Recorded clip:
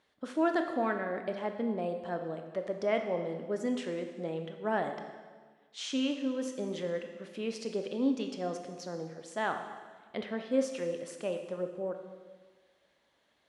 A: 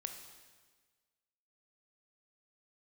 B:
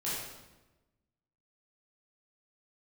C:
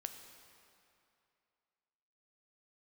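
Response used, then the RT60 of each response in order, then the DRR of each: A; 1.4 s, 1.1 s, 2.6 s; 5.5 dB, -9.5 dB, 6.0 dB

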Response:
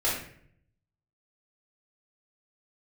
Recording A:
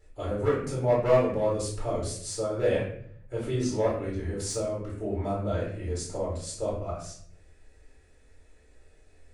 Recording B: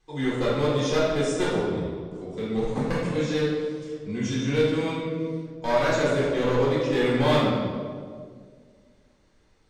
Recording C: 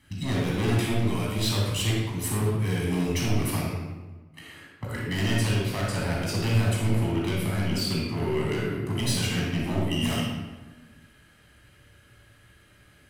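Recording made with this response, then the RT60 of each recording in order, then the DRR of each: A; 0.60 s, 1.9 s, 1.2 s; -6.5 dB, -7.0 dB, -4.5 dB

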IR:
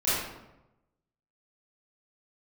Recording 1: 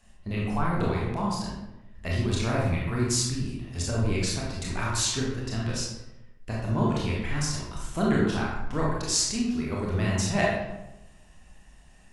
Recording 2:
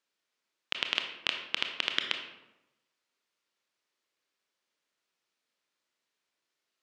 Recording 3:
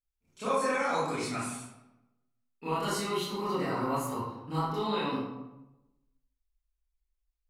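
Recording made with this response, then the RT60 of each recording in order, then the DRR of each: 3; 0.95 s, 0.95 s, 0.95 s; -4.5 dB, 4.0 dB, -13.5 dB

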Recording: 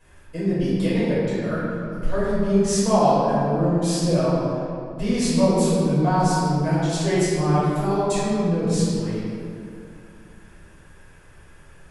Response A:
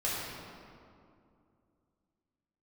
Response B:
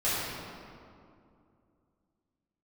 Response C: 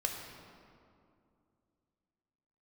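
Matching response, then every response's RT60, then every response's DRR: B; 2.5 s, 2.5 s, 2.5 s; -8.0 dB, -12.0 dB, 1.5 dB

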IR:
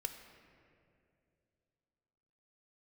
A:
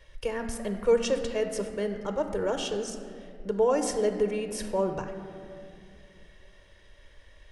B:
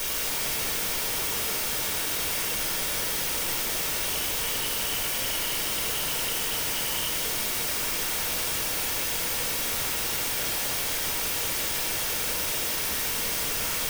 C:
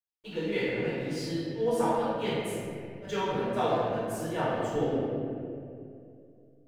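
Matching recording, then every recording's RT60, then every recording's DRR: A; 2.5 s, 2.5 s, 2.5 s; 6.5 dB, -1.5 dB, -11.5 dB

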